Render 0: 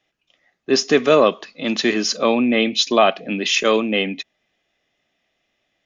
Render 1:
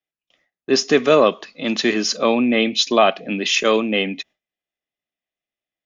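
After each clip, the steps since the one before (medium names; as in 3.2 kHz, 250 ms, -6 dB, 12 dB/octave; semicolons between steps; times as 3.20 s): gate with hold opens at -44 dBFS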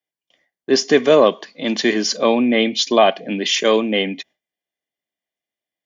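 comb of notches 1.3 kHz; trim +2 dB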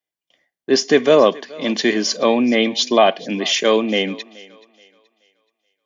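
thinning echo 427 ms, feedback 35%, high-pass 320 Hz, level -21 dB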